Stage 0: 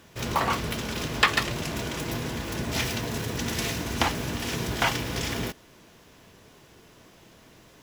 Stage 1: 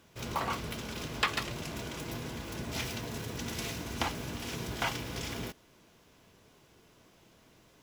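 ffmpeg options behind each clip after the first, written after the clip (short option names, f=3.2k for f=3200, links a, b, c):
-af "bandreject=f=1.8k:w=18,volume=-8dB"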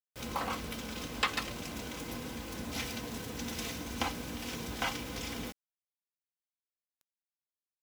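-af "aecho=1:1:3.9:0.48,acrusher=bits=7:mix=0:aa=0.000001,volume=-2dB"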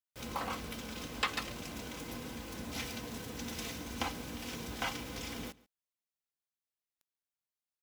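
-filter_complex "[0:a]asplit=2[a][b];[b]adelay=139.9,volume=-22dB,highshelf=f=4k:g=-3.15[c];[a][c]amix=inputs=2:normalize=0,volume=-2.5dB"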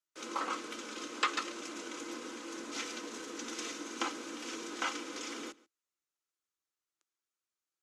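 -af "highpass=f=290:w=0.5412,highpass=f=290:w=1.3066,equalizer=f=330:t=q:w=4:g=10,equalizer=f=730:t=q:w=4:g=-7,equalizer=f=1.3k:t=q:w=4:g=8,equalizer=f=6.6k:t=q:w=4:g=6,lowpass=f=9k:w=0.5412,lowpass=f=9k:w=1.3066" -ar 48000 -c:a libopus -b:a 64k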